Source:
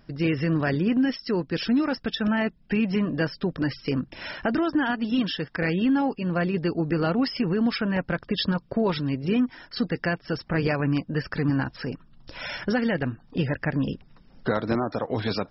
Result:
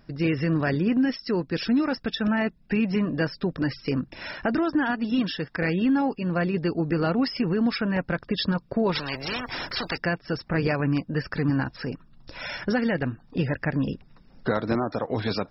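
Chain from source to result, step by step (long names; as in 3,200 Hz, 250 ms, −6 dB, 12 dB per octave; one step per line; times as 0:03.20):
notch filter 3,100 Hz, Q 11
0:08.95–0:09.98: every bin compressed towards the loudest bin 4 to 1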